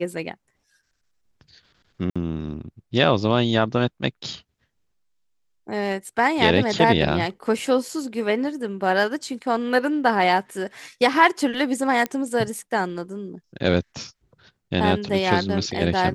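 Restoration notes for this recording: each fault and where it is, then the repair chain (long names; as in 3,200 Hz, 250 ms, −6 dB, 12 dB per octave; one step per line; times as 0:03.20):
0:02.10–0:02.16: drop-out 56 ms
0:12.06: click −12 dBFS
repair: click removal
repair the gap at 0:02.10, 56 ms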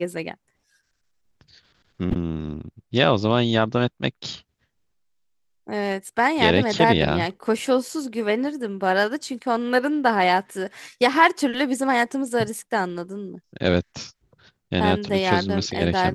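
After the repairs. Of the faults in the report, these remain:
none of them is left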